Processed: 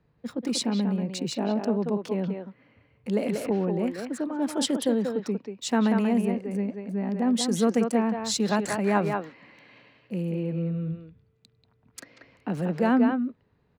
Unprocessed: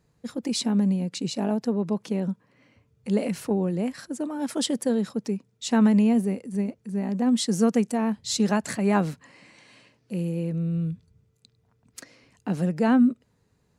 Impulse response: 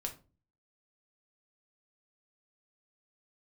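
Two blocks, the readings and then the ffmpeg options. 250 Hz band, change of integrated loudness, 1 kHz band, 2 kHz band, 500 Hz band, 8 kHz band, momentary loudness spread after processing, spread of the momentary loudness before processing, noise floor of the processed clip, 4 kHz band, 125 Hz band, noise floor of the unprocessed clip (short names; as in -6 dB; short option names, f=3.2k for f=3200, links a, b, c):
-2.0 dB, -1.5 dB, +1.5 dB, +1.0 dB, +1.0 dB, -0.5 dB, 11 LU, 12 LU, -67 dBFS, 0.0 dB, -2.5 dB, -68 dBFS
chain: -filter_complex "[0:a]acrossover=split=240|3800[a][b][c];[a]alimiter=level_in=4.5dB:limit=-24dB:level=0:latency=1,volume=-4.5dB[d];[b]aecho=1:1:187:0.631[e];[c]aeval=exprs='sgn(val(0))*max(abs(val(0))-0.00224,0)':c=same[f];[d][e][f]amix=inputs=3:normalize=0"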